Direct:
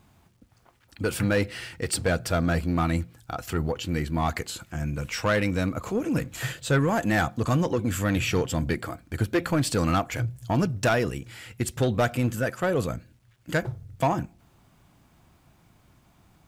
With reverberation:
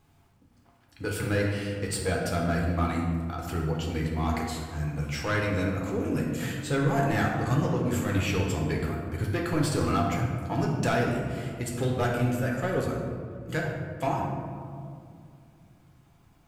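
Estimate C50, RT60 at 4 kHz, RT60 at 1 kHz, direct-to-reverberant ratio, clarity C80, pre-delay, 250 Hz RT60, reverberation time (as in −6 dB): 2.0 dB, 1.0 s, 2.1 s, −2.0 dB, 3.5 dB, 6 ms, 3.1 s, 2.4 s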